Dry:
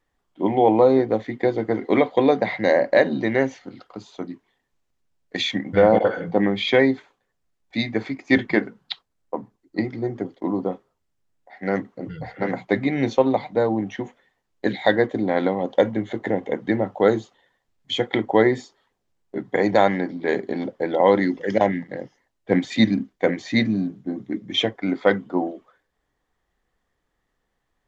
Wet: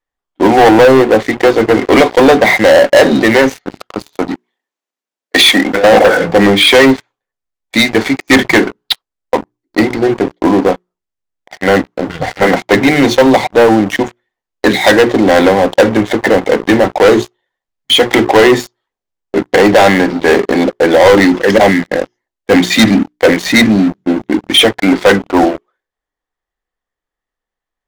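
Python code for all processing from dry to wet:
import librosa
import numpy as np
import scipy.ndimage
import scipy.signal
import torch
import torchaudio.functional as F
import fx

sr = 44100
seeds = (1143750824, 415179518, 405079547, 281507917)

y = fx.chain(x, sr, fx.highpass(hz=230.0, slope=24),
    fx.over_compress(threshold_db=-25.0, ratio=-1.0), at=(4.31, 5.84))
y = fx.peak_eq(y, sr, hz=130.0, db=-8.0, octaves=2.4)
y = fx.hum_notches(y, sr, base_hz=60, count=7)
y = fx.leveller(y, sr, passes=5)
y = y * librosa.db_to_amplitude(2.5)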